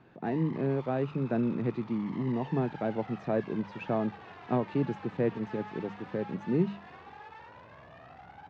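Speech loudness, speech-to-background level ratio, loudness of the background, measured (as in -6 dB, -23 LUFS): -32.0 LUFS, 16.0 dB, -48.0 LUFS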